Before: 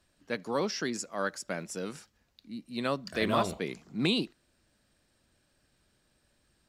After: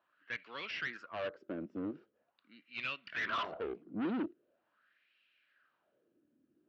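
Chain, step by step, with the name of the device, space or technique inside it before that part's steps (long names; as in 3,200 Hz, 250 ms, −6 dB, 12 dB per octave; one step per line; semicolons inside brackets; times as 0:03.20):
wah-wah guitar rig (LFO wah 0.43 Hz 270–2,600 Hz, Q 4.1; tube saturation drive 43 dB, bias 0.45; loudspeaker in its box 100–4,200 Hz, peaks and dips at 310 Hz +3 dB, 840 Hz −6 dB, 1,400 Hz +5 dB, 2,900 Hz +6 dB)
level +9 dB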